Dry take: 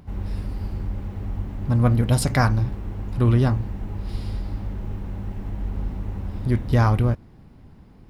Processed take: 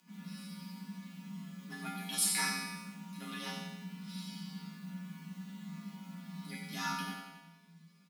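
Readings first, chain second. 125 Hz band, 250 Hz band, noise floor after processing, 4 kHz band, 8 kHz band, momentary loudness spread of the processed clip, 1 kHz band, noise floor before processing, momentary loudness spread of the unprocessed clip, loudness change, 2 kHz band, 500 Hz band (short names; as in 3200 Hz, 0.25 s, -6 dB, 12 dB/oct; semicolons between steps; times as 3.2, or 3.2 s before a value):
-26.5 dB, -15.5 dB, -62 dBFS, -1.0 dB, +1.0 dB, 15 LU, -13.0 dB, -48 dBFS, 13 LU, -15.0 dB, -7.0 dB, -26.5 dB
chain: passive tone stack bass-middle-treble 10-0-10; resonator bank C4 minor, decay 0.83 s; feedback echo 92 ms, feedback 57%, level -9.5 dB; frequency shift +160 Hz; high shelf 2200 Hz +8 dB; gain +17 dB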